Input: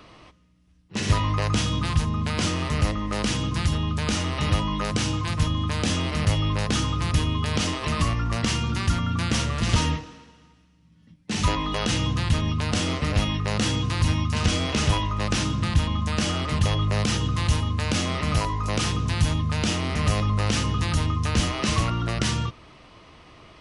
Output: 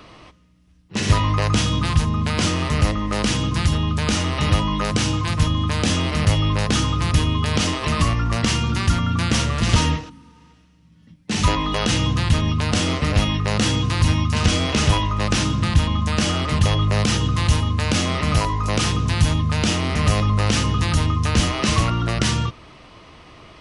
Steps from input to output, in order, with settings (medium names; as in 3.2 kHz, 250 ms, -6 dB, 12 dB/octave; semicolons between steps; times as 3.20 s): spectral replace 10.12–10.44 s, 340–8300 Hz after; trim +4.5 dB